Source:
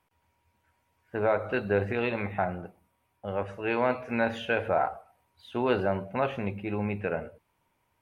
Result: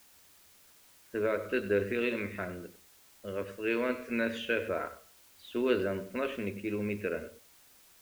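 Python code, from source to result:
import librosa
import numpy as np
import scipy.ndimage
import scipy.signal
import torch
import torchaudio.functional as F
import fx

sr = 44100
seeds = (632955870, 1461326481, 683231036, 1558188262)

y = fx.fixed_phaser(x, sr, hz=330.0, stages=4)
y = y + 10.0 ** (-15.5 / 20.0) * np.pad(y, (int(96 * sr / 1000.0), 0))[:len(y)]
y = fx.quant_dither(y, sr, seeds[0], bits=10, dither='triangular')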